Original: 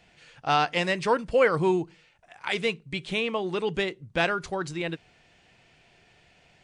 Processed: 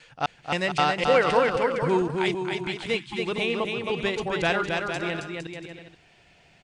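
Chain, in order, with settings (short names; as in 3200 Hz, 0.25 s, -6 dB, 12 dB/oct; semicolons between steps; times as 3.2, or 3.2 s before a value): slices in reverse order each 0.26 s, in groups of 2; bouncing-ball echo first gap 0.27 s, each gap 0.7×, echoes 5; spectral delete 2.99–3.19, 380–810 Hz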